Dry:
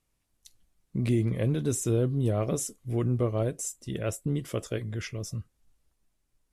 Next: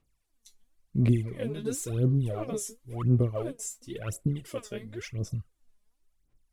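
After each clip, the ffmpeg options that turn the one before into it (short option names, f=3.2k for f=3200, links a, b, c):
-af "aphaser=in_gain=1:out_gain=1:delay=4.9:decay=0.77:speed=0.95:type=sinusoidal,volume=-7dB"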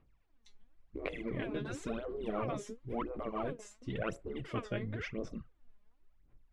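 -af "afftfilt=real='re*lt(hypot(re,im),0.0891)':imag='im*lt(hypot(re,im),0.0891)':win_size=1024:overlap=0.75,lowpass=2.2k,volume=5.5dB"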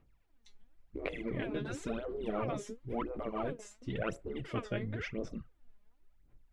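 -af "bandreject=f=1.1k:w=15,volume=1dB"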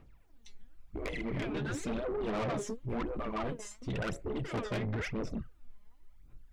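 -af "aphaser=in_gain=1:out_gain=1:delay=1:decay=0.35:speed=0.42:type=sinusoidal,asoftclip=type=tanh:threshold=-37dB,volume=6dB"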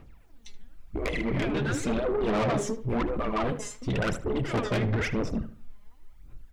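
-filter_complex "[0:a]asplit=2[a][b];[b]adelay=76,lowpass=f=2.6k:p=1,volume=-12dB,asplit=2[c][d];[d]adelay=76,lowpass=f=2.6k:p=1,volume=0.33,asplit=2[e][f];[f]adelay=76,lowpass=f=2.6k:p=1,volume=0.33[g];[a][c][e][g]amix=inputs=4:normalize=0,volume=7.5dB"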